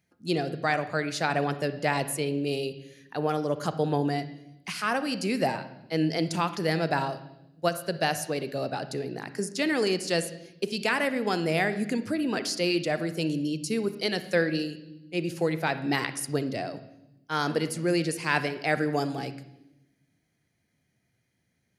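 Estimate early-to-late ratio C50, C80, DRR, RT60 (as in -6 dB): 12.5 dB, 15.5 dB, 11.5 dB, 0.90 s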